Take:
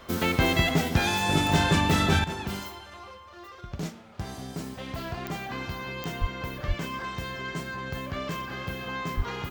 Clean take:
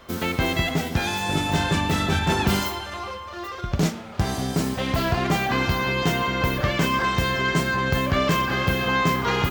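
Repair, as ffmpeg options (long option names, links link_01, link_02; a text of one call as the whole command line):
ffmpeg -i in.wav -filter_complex "[0:a]adeclick=threshold=4,asplit=3[link_01][link_02][link_03];[link_01]afade=type=out:start_time=6.2:duration=0.02[link_04];[link_02]highpass=frequency=140:width=0.5412,highpass=frequency=140:width=1.3066,afade=type=in:start_time=6.2:duration=0.02,afade=type=out:start_time=6.32:duration=0.02[link_05];[link_03]afade=type=in:start_time=6.32:duration=0.02[link_06];[link_04][link_05][link_06]amix=inputs=3:normalize=0,asplit=3[link_07][link_08][link_09];[link_07]afade=type=out:start_time=6.67:duration=0.02[link_10];[link_08]highpass=frequency=140:width=0.5412,highpass=frequency=140:width=1.3066,afade=type=in:start_time=6.67:duration=0.02,afade=type=out:start_time=6.79:duration=0.02[link_11];[link_09]afade=type=in:start_time=6.79:duration=0.02[link_12];[link_10][link_11][link_12]amix=inputs=3:normalize=0,asplit=3[link_13][link_14][link_15];[link_13]afade=type=out:start_time=9.16:duration=0.02[link_16];[link_14]highpass=frequency=140:width=0.5412,highpass=frequency=140:width=1.3066,afade=type=in:start_time=9.16:duration=0.02,afade=type=out:start_time=9.28:duration=0.02[link_17];[link_15]afade=type=in:start_time=9.28:duration=0.02[link_18];[link_16][link_17][link_18]amix=inputs=3:normalize=0,asetnsamples=nb_out_samples=441:pad=0,asendcmd='2.24 volume volume 12dB',volume=0dB" out.wav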